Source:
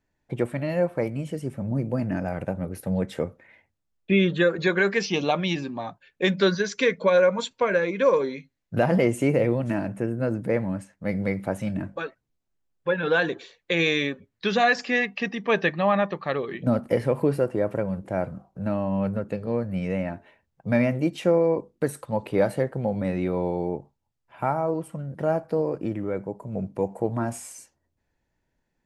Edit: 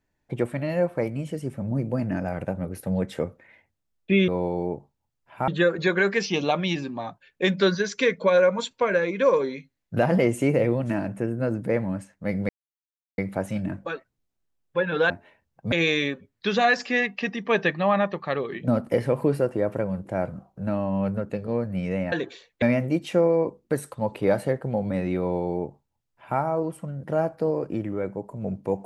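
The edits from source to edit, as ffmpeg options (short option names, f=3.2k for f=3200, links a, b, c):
-filter_complex "[0:a]asplit=8[a][b][c][d][e][f][g][h];[a]atrim=end=4.282[i];[b]atrim=start=23.298:end=24.502[j];[c]atrim=start=4.278:end=11.29,asetpts=PTS-STARTPTS,afade=t=out:st=7.008:d=0.004:c=hsin,apad=pad_dur=0.69[k];[d]atrim=start=11.29:end=13.212,asetpts=PTS-STARTPTS,afade=t=in:d=0.004:c=hsin[l];[e]atrim=start=20.108:end=20.732[m];[f]atrim=start=13.708:end=20.112[n];[g]atrim=start=13.208:end=13.712[o];[h]atrim=start=20.728[p];[i][j]acrossfade=d=0.004:c1=hsin:c2=hsin[q];[k][l]concat=n=2:v=0:a=1[r];[q][r]acrossfade=d=0.004:c1=hsin:c2=hsin[s];[s][m]acrossfade=d=0.004:c1=hsin:c2=hsin[t];[t][n]acrossfade=d=0.004:c1=hsin:c2=hsin[u];[u][o]acrossfade=d=0.004:c1=hsin:c2=hsin[v];[v][p]acrossfade=d=0.004:c1=hsin:c2=hsin"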